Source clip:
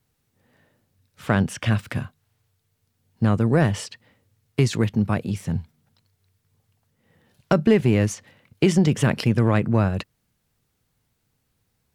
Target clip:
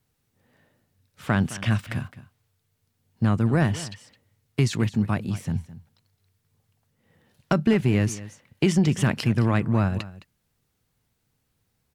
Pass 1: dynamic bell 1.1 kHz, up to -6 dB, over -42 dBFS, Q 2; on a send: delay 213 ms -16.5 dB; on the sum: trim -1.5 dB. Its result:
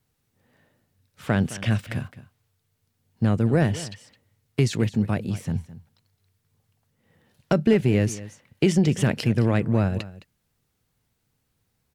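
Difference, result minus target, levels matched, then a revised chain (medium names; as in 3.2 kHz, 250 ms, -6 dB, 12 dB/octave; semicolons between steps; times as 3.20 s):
500 Hz band +3.0 dB
dynamic bell 490 Hz, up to -6 dB, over -42 dBFS, Q 2; on a send: delay 213 ms -16.5 dB; on the sum: trim -1.5 dB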